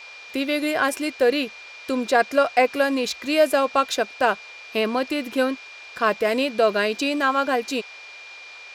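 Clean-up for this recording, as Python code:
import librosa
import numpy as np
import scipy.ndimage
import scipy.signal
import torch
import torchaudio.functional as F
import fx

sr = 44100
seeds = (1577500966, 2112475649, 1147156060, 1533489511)

y = fx.notch(x, sr, hz=2400.0, q=30.0)
y = fx.noise_reduce(y, sr, print_start_s=8.11, print_end_s=8.61, reduce_db=24.0)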